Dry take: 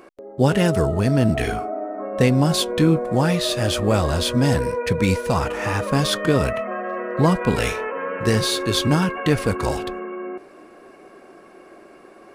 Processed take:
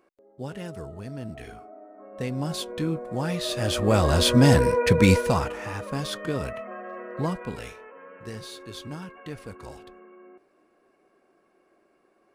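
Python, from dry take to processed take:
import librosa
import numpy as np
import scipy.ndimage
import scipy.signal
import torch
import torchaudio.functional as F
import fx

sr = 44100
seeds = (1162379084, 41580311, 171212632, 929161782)

y = fx.gain(x, sr, db=fx.line((1.93, -18.5), (2.47, -11.0), (3.08, -11.0), (4.27, 2.0), (5.17, 2.0), (5.65, -10.5), (7.26, -10.5), (7.78, -19.0)))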